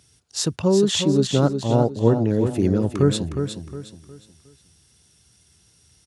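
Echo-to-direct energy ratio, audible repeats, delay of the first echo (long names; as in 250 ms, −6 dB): −7.0 dB, 3, 361 ms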